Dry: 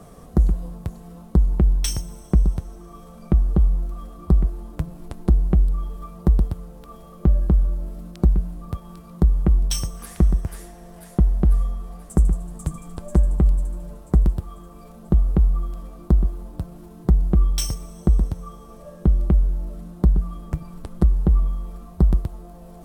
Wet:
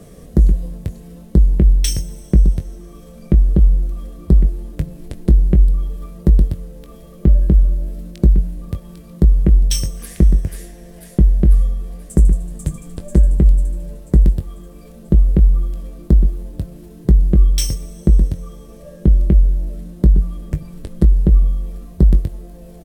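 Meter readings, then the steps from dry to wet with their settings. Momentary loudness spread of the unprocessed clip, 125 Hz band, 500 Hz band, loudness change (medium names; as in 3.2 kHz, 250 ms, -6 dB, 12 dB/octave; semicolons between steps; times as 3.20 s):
15 LU, +5.5 dB, +4.5 dB, +5.5 dB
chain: high-order bell 1 kHz -10.5 dB 1.2 oct; doubling 21 ms -10.5 dB; trim +4.5 dB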